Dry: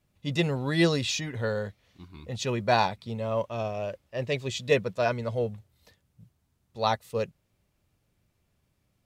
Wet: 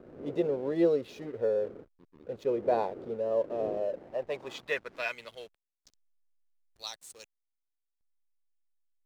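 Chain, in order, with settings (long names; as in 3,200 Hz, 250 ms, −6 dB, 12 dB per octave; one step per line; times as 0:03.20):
wind on the microphone 290 Hz −41 dBFS
dynamic equaliser 410 Hz, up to +5 dB, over −40 dBFS, Q 0.99
band-pass filter sweep 470 Hz → 8,000 Hz, 0:03.80–0:06.09
in parallel at −2.5 dB: downward compressor, threshold −36 dBFS, peak gain reduction 16 dB
on the sum: high-shelf EQ 3,200 Hz +9 dB
slack as between gear wheels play −45 dBFS
level −2 dB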